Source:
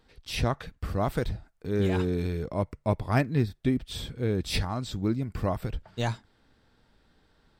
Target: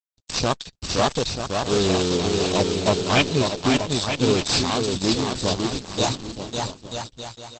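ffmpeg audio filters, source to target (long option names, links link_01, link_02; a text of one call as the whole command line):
ffmpeg -i in.wav -filter_complex "[0:a]bandreject=frequency=3200:width=5.4,afwtdn=0.0316,adynamicequalizer=threshold=0.00224:dfrequency=2000:dqfactor=1.6:tfrequency=2000:tqfactor=1.6:attack=5:release=100:ratio=0.375:range=3:mode=boostabove:tftype=bell,asettb=1/sr,asplit=3[link_01][link_02][link_03];[link_01]atrim=end=5.204[link_04];[link_02]atrim=start=5.2:end=5.91,asetpts=PTS-STARTPTS,afade=type=in:duration=0.004:curve=qsin,afade=type=out:start_time=0.706:duration=0.004:curve=qsin,acrossover=split=480[link_05][link_06];[link_06]acompressor=threshold=-50dB:ratio=2[link_07];[link_05][link_07]amix=inputs=2:normalize=0[link_08];[link_03]atrim=start=5.906[link_09];[link_04][link_08]acrossfade=duration=0.004:curve1=hsin:curve2=qsin[link_10];[link_10][link_09]acrossfade=duration=0.004:curve1=qsin:curve2=hsin,aeval=exprs='sgn(val(0))*max(abs(val(0))-0.00398,0)':channel_layout=same,crystalizer=i=3:c=0,asoftclip=type=tanh:threshold=-12.5dB,aexciter=amount=8:drive=8.9:freq=2900,asplit=2[link_11][link_12];[link_12]highpass=frequency=720:poles=1,volume=22dB,asoftclip=type=tanh:threshold=-1.5dB[link_13];[link_11][link_13]amix=inputs=2:normalize=0,lowpass=frequency=1500:poles=1,volume=-6dB,aecho=1:1:550|935|1204|1393|1525:0.631|0.398|0.251|0.158|0.1" -ar 48000 -c:a libopus -b:a 12k out.opus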